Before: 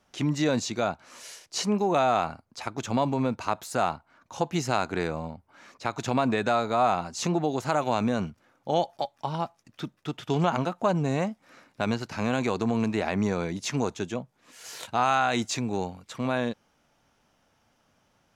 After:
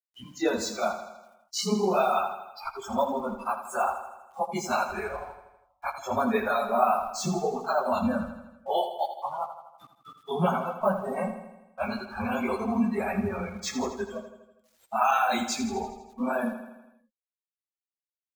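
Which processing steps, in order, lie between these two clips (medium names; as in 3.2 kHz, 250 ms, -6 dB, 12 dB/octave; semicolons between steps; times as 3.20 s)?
phase randomisation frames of 50 ms; word length cut 6-bit, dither none; spectral noise reduction 27 dB; feedback delay 81 ms, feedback 58%, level -10 dB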